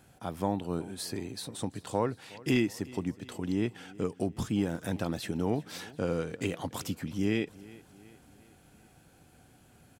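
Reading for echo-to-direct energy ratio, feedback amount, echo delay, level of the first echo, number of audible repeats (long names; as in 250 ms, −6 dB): −19.5 dB, 52%, 367 ms, −21.0 dB, 3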